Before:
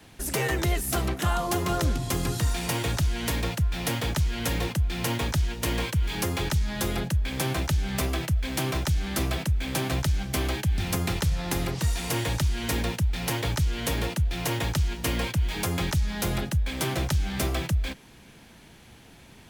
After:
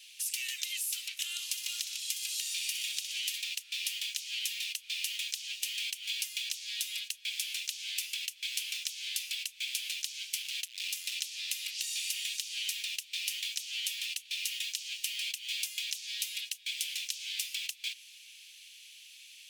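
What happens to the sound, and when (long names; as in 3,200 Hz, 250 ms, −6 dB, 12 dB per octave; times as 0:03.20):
0:01.24–0:03.38: delay with a high-pass on its return 61 ms, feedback 61%, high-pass 1,900 Hz, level −10 dB
0:08.31–0:09.00: low shelf with overshoot 470 Hz −11 dB, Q 1.5
0:10.42–0:11.13: gain into a clipping stage and back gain 28 dB
0:14.51–0:17.56: parametric band 1,200 Hz −12.5 dB 0.21 octaves
whole clip: elliptic high-pass filter 2,600 Hz, stop band 80 dB; high-shelf EQ 9,800 Hz −6 dB; downward compressor, threshold −39 dBFS; level +7 dB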